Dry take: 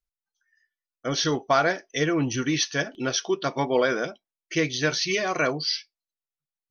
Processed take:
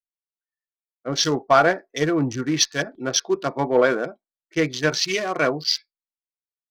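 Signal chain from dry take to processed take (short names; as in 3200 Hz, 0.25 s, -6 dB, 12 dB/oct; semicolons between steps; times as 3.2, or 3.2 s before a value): Wiener smoothing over 15 samples; bell 67 Hz -7 dB 1.5 oct; in parallel at -5.5 dB: one-sided clip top -19.5 dBFS; on the sum: three-band expander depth 70%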